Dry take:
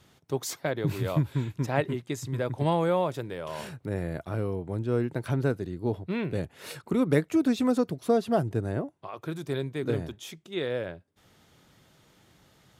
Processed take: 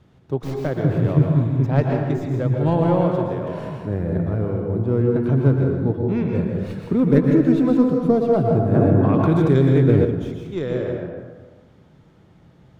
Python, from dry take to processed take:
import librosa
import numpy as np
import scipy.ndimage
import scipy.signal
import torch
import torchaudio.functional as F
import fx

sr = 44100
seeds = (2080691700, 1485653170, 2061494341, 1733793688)

y = fx.tracing_dist(x, sr, depth_ms=0.17)
y = fx.lowpass(y, sr, hz=1800.0, slope=6)
y = fx.low_shelf(y, sr, hz=490.0, db=8.5)
y = y + 10.0 ** (-11.0 / 20.0) * np.pad(y, (int(158 * sr / 1000.0), 0))[:len(y)]
y = fx.rev_plate(y, sr, seeds[0], rt60_s=1.3, hf_ratio=0.55, predelay_ms=105, drr_db=1.0)
y = fx.env_flatten(y, sr, amount_pct=70, at=(8.72, 10.04), fade=0.02)